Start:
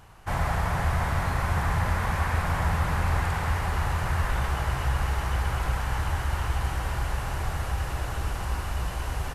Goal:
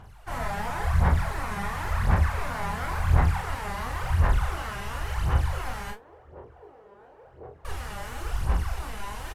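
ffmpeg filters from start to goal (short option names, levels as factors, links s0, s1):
-filter_complex "[0:a]asettb=1/sr,asplit=3[s0][s1][s2];[s0]atrim=end=5.904[s3];[s1]atrim=start=5.9:end=7.65,asetpts=PTS-STARTPTS,afade=t=in:d=0.004:c=qsin,afade=t=out:st=1.746:d=0.004:c=qsin,bandpass=f=450:t=q:w=4.6:csg=0[s4];[s2]atrim=start=7.646[s5];[s3][s4]acrossfade=d=0.004:c1=hsin:c2=qsin[s6];[s6][s5]acrossfade=d=0.004:c1=qsin:c2=hsin,aphaser=in_gain=1:out_gain=1:delay=5:decay=0.79:speed=0.94:type=sinusoidal,asplit=2[s7][s8];[s8]aecho=0:1:24|41:0.473|0.562[s9];[s7][s9]amix=inputs=2:normalize=0,volume=0.376"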